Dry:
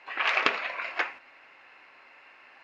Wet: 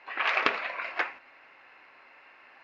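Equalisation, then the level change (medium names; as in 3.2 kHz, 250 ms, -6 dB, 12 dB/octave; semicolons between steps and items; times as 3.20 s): low-pass 5.1 kHz 12 dB/octave; peaking EQ 3 kHz -2.5 dB 0.77 oct; 0.0 dB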